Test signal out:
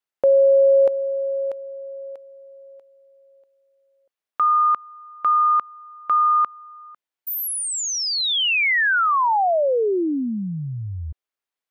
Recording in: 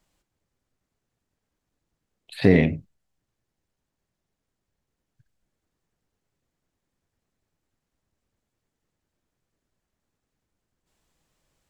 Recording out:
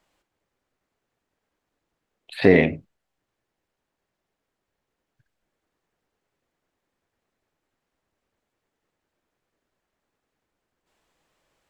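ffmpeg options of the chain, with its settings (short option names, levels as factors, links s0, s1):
-af "bass=f=250:g=-11,treble=f=4000:g=-8,volume=1.88"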